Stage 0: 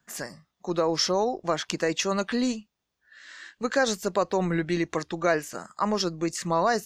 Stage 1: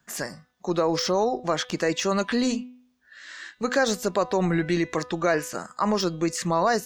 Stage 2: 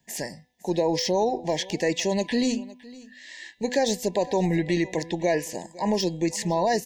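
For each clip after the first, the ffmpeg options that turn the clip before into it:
ffmpeg -i in.wav -filter_complex "[0:a]deesser=0.6,bandreject=frequency=249.6:width_type=h:width=4,bandreject=frequency=499.2:width_type=h:width=4,bandreject=frequency=748.8:width_type=h:width=4,bandreject=frequency=998.4:width_type=h:width=4,bandreject=frequency=1248:width_type=h:width=4,bandreject=frequency=1497.6:width_type=h:width=4,bandreject=frequency=1747.2:width_type=h:width=4,bandreject=frequency=1996.8:width_type=h:width=4,bandreject=frequency=2246.4:width_type=h:width=4,bandreject=frequency=2496:width_type=h:width=4,bandreject=frequency=2745.6:width_type=h:width=4,bandreject=frequency=2995.2:width_type=h:width=4,bandreject=frequency=3244.8:width_type=h:width=4,bandreject=frequency=3494.4:width_type=h:width=4,bandreject=frequency=3744:width_type=h:width=4,bandreject=frequency=3993.6:width_type=h:width=4,asplit=2[link_01][link_02];[link_02]alimiter=limit=-20.5dB:level=0:latency=1:release=59,volume=0.5dB[link_03];[link_01][link_03]amix=inputs=2:normalize=0,volume=-2dB" out.wav
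ffmpeg -i in.wav -af "asuperstop=centerf=1300:order=12:qfactor=1.8,aecho=1:1:510:0.0944" out.wav

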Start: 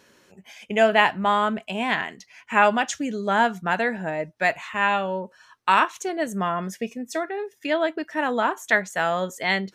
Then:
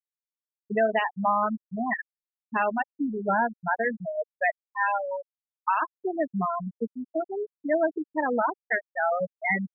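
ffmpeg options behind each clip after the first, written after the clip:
ffmpeg -i in.wav -af "afftfilt=real='re*gte(hypot(re,im),0.282)':imag='im*gte(hypot(re,im),0.282)':win_size=1024:overlap=0.75,alimiter=limit=-14.5dB:level=0:latency=1:release=299" out.wav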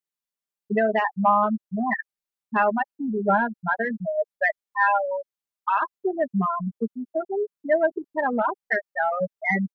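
ffmpeg -i in.wav -af "acontrast=78,aecho=1:1:5:0.56,volume=-5dB" out.wav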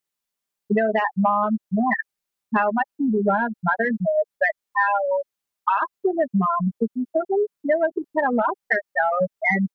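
ffmpeg -i in.wav -af "acompressor=threshold=-24dB:ratio=6,volume=7dB" out.wav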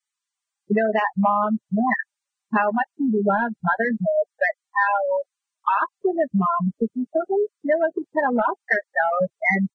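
ffmpeg -i in.wav -ar 22050 -c:a libvorbis -b:a 16k out.ogg

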